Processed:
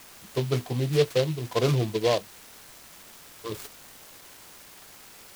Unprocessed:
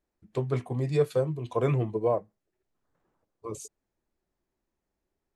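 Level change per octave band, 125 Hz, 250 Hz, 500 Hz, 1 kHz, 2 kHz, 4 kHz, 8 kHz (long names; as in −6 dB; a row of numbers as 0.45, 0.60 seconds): +2.0 dB, +2.0 dB, +2.0 dB, +1.5 dB, +8.0 dB, can't be measured, +8.0 dB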